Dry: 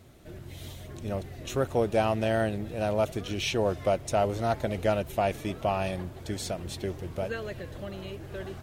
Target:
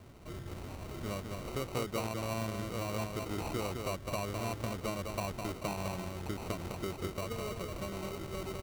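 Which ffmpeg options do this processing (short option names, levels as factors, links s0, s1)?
-filter_complex "[0:a]acrossover=split=340|4100[s0][s1][s2];[s0]acompressor=threshold=0.0112:ratio=4[s3];[s1]acompressor=threshold=0.01:ratio=4[s4];[s2]acompressor=threshold=0.00251:ratio=4[s5];[s3][s4][s5]amix=inputs=3:normalize=0,aecho=1:1:207:0.562,acrusher=samples=26:mix=1:aa=0.000001"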